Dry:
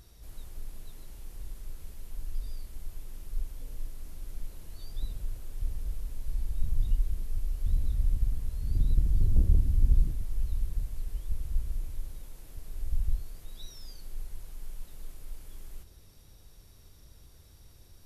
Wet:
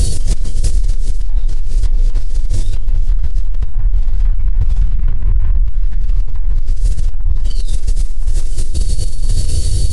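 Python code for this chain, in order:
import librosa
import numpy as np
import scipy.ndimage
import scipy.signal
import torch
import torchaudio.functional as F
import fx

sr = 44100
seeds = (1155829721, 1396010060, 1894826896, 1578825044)

y = fx.cheby_harmonics(x, sr, harmonics=(7,), levels_db=(-30,), full_scale_db=-10.5)
y = fx.curve_eq(y, sr, hz=(130.0, 220.0, 460.0, 670.0, 1100.0, 3100.0, 6000.0), db=(0, -10, -3, -7, -27, -18, -3))
y = fx.rider(y, sr, range_db=5, speed_s=2.0)
y = fx.stretch_grains(y, sr, factor=0.55, grain_ms=105.0)
y = fx.quant_float(y, sr, bits=4)
y = fx.env_lowpass_down(y, sr, base_hz=2600.0, full_db=-22.5)
y = fx.formant_shift(y, sr, semitones=-4)
y = fx.echo_feedback(y, sr, ms=1021, feedback_pct=22, wet_db=-13.5)
y = fx.room_shoebox(y, sr, seeds[0], volume_m3=240.0, walls='furnished', distance_m=1.9)
y = fx.env_flatten(y, sr, amount_pct=100)
y = y * librosa.db_to_amplitude(-1.5)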